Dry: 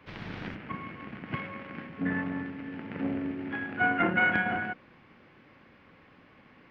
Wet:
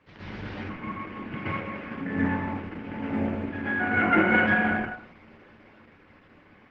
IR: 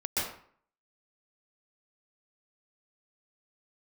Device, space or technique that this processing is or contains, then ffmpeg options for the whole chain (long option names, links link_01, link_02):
speakerphone in a meeting room: -filter_complex "[1:a]atrim=start_sample=2205[link_01];[0:a][link_01]afir=irnorm=-1:irlink=0,dynaudnorm=framelen=270:gausssize=9:maxgain=3dB,volume=-4.5dB" -ar 48000 -c:a libopus -b:a 12k